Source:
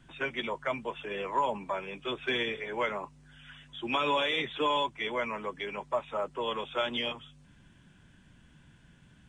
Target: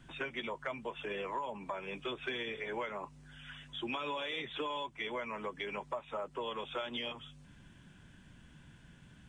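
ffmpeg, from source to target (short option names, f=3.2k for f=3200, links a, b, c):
-af "acompressor=threshold=-37dB:ratio=6,volume=1dB"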